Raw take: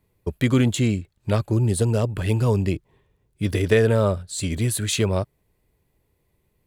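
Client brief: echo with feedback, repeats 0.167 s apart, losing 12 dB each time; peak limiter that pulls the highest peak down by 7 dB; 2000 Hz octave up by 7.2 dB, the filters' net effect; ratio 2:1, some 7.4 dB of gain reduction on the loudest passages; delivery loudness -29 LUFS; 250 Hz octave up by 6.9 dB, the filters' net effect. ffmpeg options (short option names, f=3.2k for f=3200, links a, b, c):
-af "equalizer=f=250:t=o:g=8,equalizer=f=2k:t=o:g=8.5,acompressor=threshold=-22dB:ratio=2,alimiter=limit=-14.5dB:level=0:latency=1,aecho=1:1:167|334|501:0.251|0.0628|0.0157,volume=-4dB"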